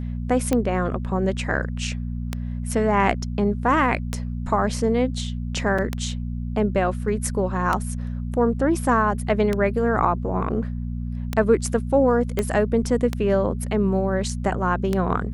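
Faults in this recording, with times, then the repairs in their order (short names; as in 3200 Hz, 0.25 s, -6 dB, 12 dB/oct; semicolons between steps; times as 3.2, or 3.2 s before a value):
hum 60 Hz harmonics 4 -28 dBFS
tick 33 1/3 rpm -9 dBFS
5.78–5.79 gap 5.2 ms
12.39 pop -9 dBFS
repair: de-click; de-hum 60 Hz, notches 4; interpolate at 5.78, 5.2 ms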